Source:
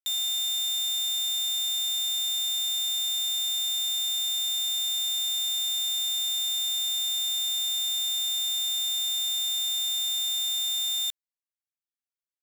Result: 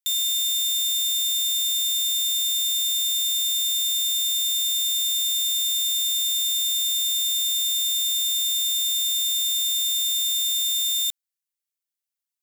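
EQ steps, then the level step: high-pass 1.4 kHz 12 dB/octave; treble shelf 4.7 kHz +8.5 dB; 0.0 dB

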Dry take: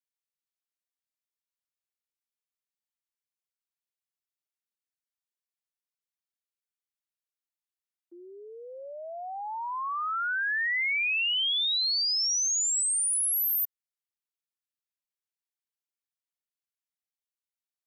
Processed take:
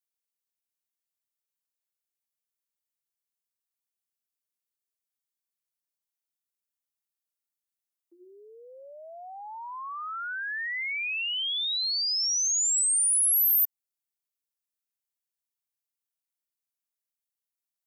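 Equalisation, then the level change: treble shelf 5.6 kHz +11.5 dB; hum notches 50/100/150/200/250/300/350 Hz; -5.5 dB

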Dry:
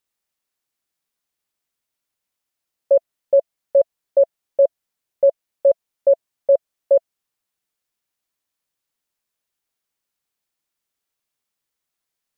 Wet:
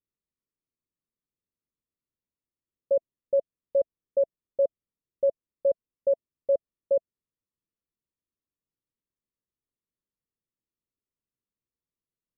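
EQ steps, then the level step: boxcar filter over 57 samples; 0.0 dB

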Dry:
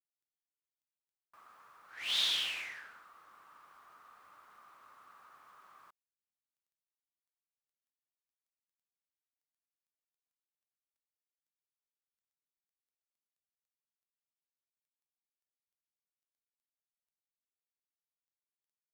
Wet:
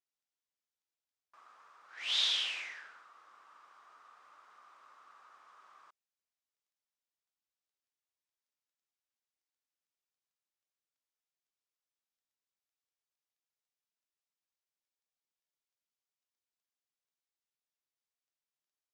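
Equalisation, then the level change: distance through air 120 m; tone controls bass -13 dB, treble +10 dB; band-stop 4.3 kHz, Q 27; 0.0 dB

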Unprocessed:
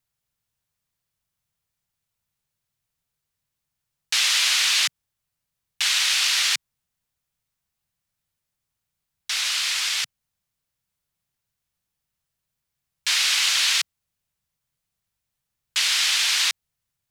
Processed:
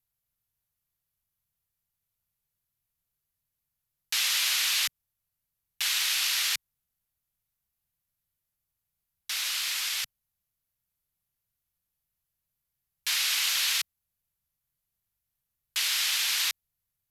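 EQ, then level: bass shelf 85 Hz +8 dB; peaking EQ 12 kHz +14.5 dB 0.3 oct; -7.0 dB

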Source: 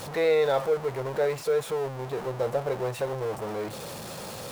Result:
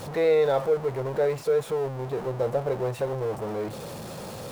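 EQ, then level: tilt shelf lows +3.5 dB, about 830 Hz; 0.0 dB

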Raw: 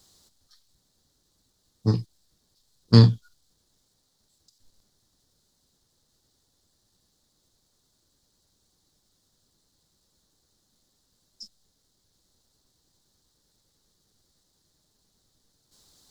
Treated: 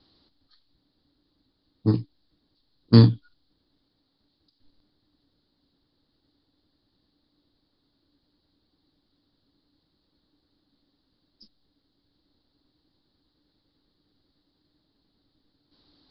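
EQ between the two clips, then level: steep low-pass 4.8 kHz 96 dB/octave; peaking EQ 290 Hz +15 dB 0.3 oct; -1.0 dB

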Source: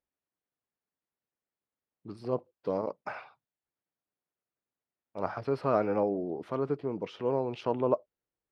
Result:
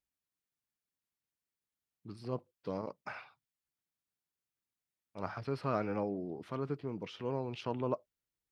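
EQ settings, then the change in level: peaking EQ 560 Hz -10 dB 2.5 oct; +1.0 dB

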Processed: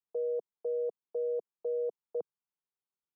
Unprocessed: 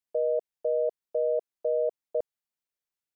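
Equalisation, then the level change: Chebyshev high-pass 170 Hz; distance through air 420 m; static phaser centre 400 Hz, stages 8; +1.0 dB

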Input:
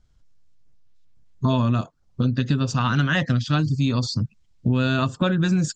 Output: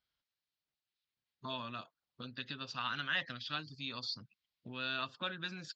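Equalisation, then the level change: band-pass filter 4.7 kHz, Q 1.6; distance through air 360 m; +4.5 dB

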